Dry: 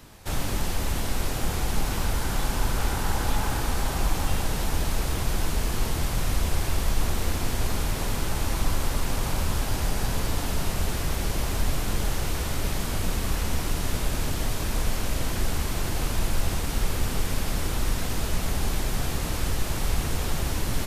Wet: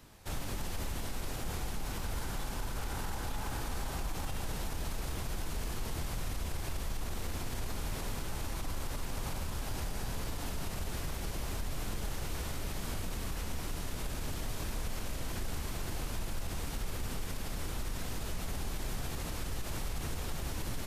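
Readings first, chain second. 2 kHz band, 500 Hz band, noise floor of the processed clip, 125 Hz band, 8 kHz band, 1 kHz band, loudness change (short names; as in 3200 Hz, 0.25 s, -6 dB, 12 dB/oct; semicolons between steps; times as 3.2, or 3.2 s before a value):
-10.5 dB, -10.5 dB, -39 dBFS, -11.0 dB, -10.5 dB, -10.5 dB, -11.0 dB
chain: limiter -19.5 dBFS, peak gain reduction 8.5 dB; gain -8 dB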